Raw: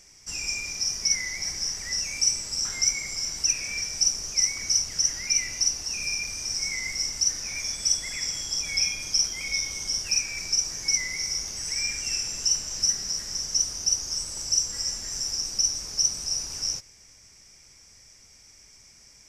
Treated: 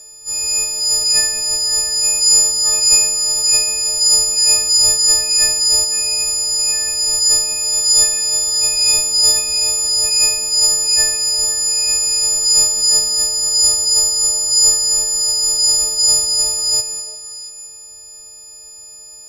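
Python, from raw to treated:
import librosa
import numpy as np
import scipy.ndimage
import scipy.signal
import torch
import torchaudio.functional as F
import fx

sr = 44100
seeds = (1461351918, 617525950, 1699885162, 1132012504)

p1 = fx.freq_snap(x, sr, grid_st=6)
p2 = fx.transient(p1, sr, attack_db=-3, sustain_db=11)
p3 = fx.graphic_eq_10(p2, sr, hz=(250, 500, 2000, 4000, 8000), db=(-8, 9, -12, -11, 4))
p4 = p3 + fx.echo_stepped(p3, sr, ms=172, hz=210.0, octaves=1.4, feedback_pct=70, wet_db=-5.5, dry=0)
y = p4 * librosa.db_to_amplitude(5.0)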